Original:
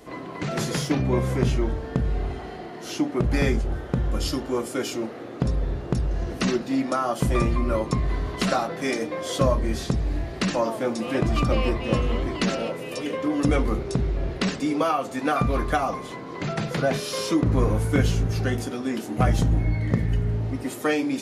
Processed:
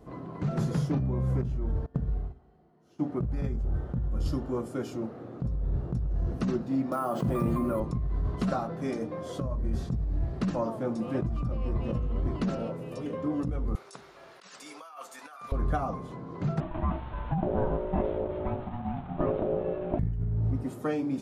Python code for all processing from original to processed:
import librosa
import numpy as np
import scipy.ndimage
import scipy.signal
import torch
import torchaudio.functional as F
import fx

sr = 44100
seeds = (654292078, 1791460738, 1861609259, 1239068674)

y = fx.chain(x, sr, fx.hum_notches(base_hz=60, count=7),
    fx.upward_expand(threshold_db=-34.0, expansion=2.5), at=(1.86, 3.02))
y = fx.chain(y, sr, fx.highpass(hz=180.0, slope=12),
    fx.resample_bad(factor=4, down='filtered', up='hold'),
    fx.env_flatten(amount_pct=70), at=(6.92, 7.8))
y = fx.chain(y, sr, fx.highpass(hz=1200.0, slope=12),
    fx.high_shelf(hz=4400.0, db=10.5),
    fx.over_compress(threshold_db=-35.0, ratio=-1.0), at=(13.75, 15.52))
y = fx.chain(y, sr, fx.delta_mod(bps=16000, step_db=-30.0),
    fx.ring_mod(carrier_hz=480.0), at=(16.6, 19.99))
y = fx.curve_eq(y, sr, hz=(160.0, 310.0, 1300.0, 2000.0), db=(0, -8, -10, -19))
y = fx.over_compress(y, sr, threshold_db=-27.0, ratio=-1.0)